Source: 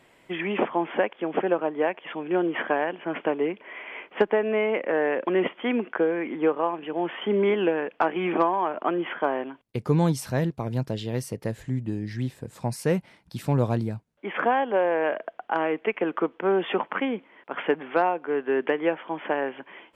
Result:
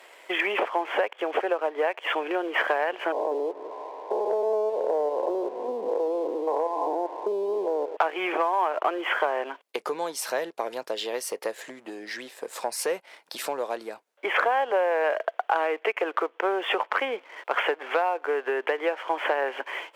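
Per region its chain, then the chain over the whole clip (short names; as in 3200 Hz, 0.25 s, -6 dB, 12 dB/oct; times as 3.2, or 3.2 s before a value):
3.12–7.97 stepped spectrum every 0.2 s + brick-wall FIR low-pass 1100 Hz + feedback echo 0.19 s, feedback 51%, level -19 dB
whole clip: compressor 6:1, threshold -32 dBFS; sample leveller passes 1; HPF 450 Hz 24 dB/oct; gain +8.5 dB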